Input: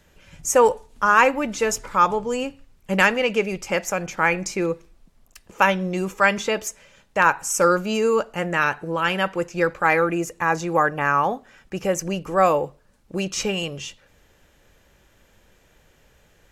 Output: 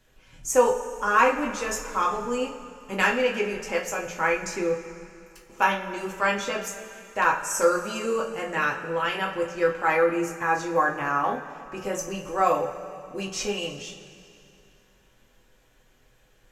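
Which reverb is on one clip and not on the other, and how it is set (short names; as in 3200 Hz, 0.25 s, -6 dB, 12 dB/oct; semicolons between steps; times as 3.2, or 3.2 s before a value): two-slope reverb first 0.26 s, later 2.7 s, from -18 dB, DRR -2.5 dB; gain -8.5 dB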